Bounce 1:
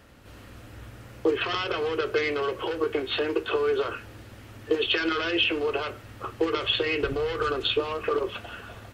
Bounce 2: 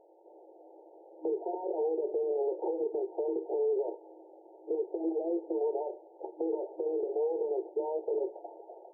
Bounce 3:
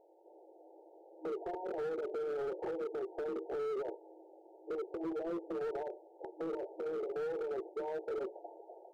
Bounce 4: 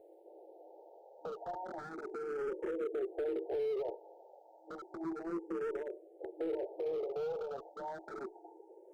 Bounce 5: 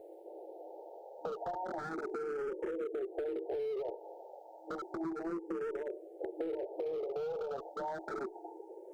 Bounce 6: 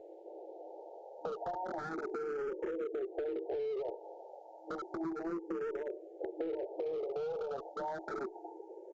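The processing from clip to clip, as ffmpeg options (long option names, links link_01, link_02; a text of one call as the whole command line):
ffmpeg -i in.wav -af "afftfilt=real='re*between(b*sr/4096,320,930)':imag='im*between(b*sr/4096,320,930)':win_size=4096:overlap=0.75,alimiter=limit=-24dB:level=0:latency=1:release=64" out.wav
ffmpeg -i in.wav -af "volume=30.5dB,asoftclip=hard,volume=-30.5dB,volume=-4dB" out.wav
ffmpeg -i in.wav -filter_complex "[0:a]areverse,acompressor=mode=upward:threshold=-53dB:ratio=2.5,areverse,asplit=2[link_01][link_02];[link_02]afreqshift=0.32[link_03];[link_01][link_03]amix=inputs=2:normalize=1,volume=3dB" out.wav
ffmpeg -i in.wav -af "acompressor=threshold=-42dB:ratio=6,volume=7dB" out.wav
ffmpeg -i in.wav -af "aresample=16000,aresample=44100" out.wav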